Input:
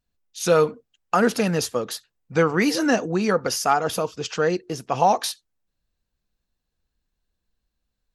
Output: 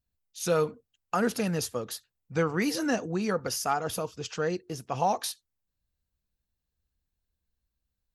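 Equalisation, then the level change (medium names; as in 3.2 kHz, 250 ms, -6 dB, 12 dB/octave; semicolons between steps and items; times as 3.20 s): peaking EQ 79 Hz +9 dB 1.6 oct; treble shelf 10 kHz +9.5 dB; -8.5 dB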